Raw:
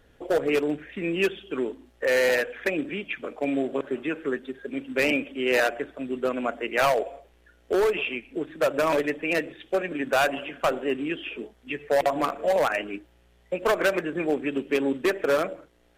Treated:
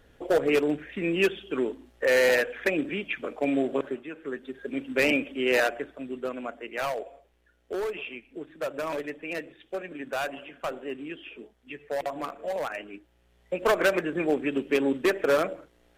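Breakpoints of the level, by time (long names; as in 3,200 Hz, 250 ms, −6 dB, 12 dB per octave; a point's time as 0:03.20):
0:03.86 +0.5 dB
0:04.06 −11 dB
0:04.66 0 dB
0:05.43 0 dB
0:06.59 −8.5 dB
0:12.93 −8.5 dB
0:13.66 0 dB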